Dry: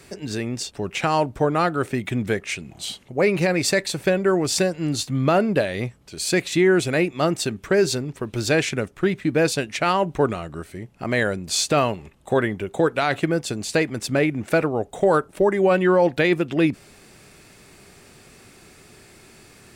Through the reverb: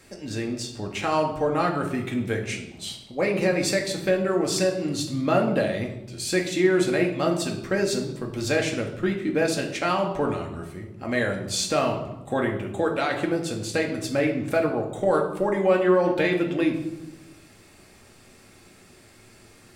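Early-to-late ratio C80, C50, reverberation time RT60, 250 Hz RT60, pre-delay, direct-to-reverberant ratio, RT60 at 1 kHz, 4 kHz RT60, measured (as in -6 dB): 10.5 dB, 7.5 dB, 0.95 s, 1.4 s, 4 ms, 0.5 dB, 0.85 s, 0.70 s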